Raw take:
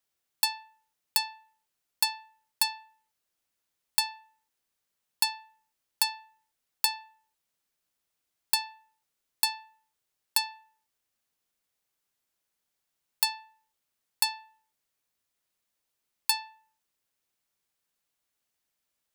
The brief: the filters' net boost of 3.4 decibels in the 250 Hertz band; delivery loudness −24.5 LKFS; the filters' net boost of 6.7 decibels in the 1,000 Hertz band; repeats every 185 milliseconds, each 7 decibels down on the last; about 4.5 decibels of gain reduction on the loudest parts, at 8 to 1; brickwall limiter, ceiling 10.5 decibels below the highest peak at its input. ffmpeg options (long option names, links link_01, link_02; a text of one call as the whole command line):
ffmpeg -i in.wav -af "equalizer=frequency=250:width_type=o:gain=4,equalizer=frequency=1000:width_type=o:gain=7.5,acompressor=threshold=-25dB:ratio=8,alimiter=limit=-21.5dB:level=0:latency=1,aecho=1:1:185|370|555|740|925:0.447|0.201|0.0905|0.0407|0.0183,volume=15.5dB" out.wav